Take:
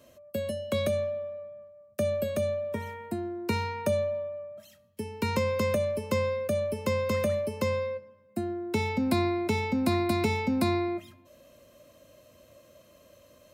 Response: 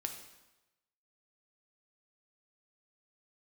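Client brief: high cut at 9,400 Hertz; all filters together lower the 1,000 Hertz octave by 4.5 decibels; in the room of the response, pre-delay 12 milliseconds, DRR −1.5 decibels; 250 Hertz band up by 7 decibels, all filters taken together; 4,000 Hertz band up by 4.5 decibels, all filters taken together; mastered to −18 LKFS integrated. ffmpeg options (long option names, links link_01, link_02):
-filter_complex "[0:a]lowpass=9400,equalizer=frequency=250:width_type=o:gain=9,equalizer=frequency=1000:width_type=o:gain=-6.5,equalizer=frequency=4000:width_type=o:gain=5.5,asplit=2[link_01][link_02];[1:a]atrim=start_sample=2205,adelay=12[link_03];[link_02][link_03]afir=irnorm=-1:irlink=0,volume=2dB[link_04];[link_01][link_04]amix=inputs=2:normalize=0,volume=5dB"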